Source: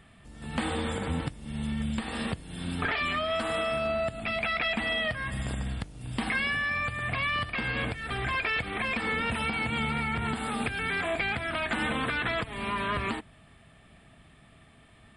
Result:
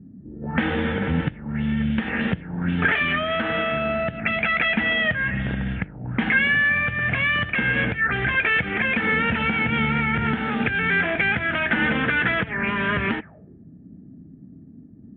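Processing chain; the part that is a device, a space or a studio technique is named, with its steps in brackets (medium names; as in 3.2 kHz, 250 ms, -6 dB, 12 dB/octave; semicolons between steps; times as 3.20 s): envelope filter bass rig (touch-sensitive low-pass 230–3300 Hz up, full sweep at -29 dBFS; cabinet simulation 77–2100 Hz, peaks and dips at 180 Hz +6 dB, 700 Hz -5 dB, 1.1 kHz -10 dB, 1.6 kHz +4 dB); trim +7.5 dB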